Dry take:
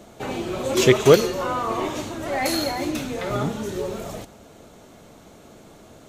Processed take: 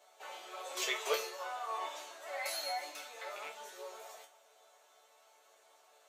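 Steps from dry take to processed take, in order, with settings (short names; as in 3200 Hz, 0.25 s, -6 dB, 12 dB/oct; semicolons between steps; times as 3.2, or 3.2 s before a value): rattling part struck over -24 dBFS, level -20 dBFS; HPF 610 Hz 24 dB/oct; resonator bank D3 major, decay 0.24 s; gain +1 dB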